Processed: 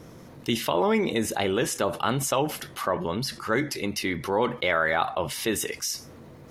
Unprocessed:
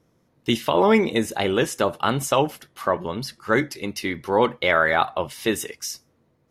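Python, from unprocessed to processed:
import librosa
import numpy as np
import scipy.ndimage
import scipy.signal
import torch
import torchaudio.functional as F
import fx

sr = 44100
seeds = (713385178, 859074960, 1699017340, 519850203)

y = fx.env_flatten(x, sr, amount_pct=50)
y = F.gain(torch.from_numpy(y), -7.0).numpy()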